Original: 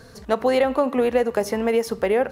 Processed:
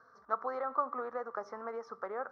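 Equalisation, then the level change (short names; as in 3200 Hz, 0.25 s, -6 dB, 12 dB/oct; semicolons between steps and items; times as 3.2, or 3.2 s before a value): double band-pass 2700 Hz, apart 2.2 oct; air absorption 360 m; high shelf 3400 Hz -10 dB; +4.5 dB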